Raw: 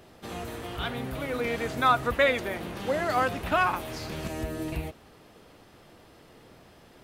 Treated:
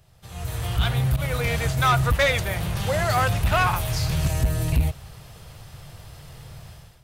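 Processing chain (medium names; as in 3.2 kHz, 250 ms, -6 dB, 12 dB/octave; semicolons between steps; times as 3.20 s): 1.16–2.57 s: expander -30 dBFS; FFT filter 140 Hz 0 dB, 260 Hz -26 dB, 640 Hz -14 dB, 1.9 kHz -13 dB, 8.1 kHz -5 dB; level rider gain up to 16 dB; saturation -16.5 dBFS, distortion -12 dB; trim +3 dB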